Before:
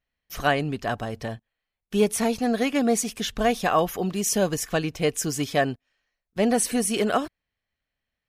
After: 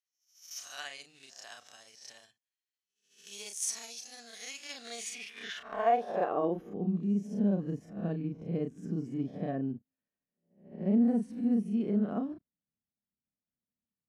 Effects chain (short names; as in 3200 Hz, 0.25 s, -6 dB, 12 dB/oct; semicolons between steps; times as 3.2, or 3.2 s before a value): spectral swells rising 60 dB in 0.30 s; granular stretch 1.7×, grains 0.145 s; band-pass sweep 6300 Hz -> 210 Hz, 4.58–6.75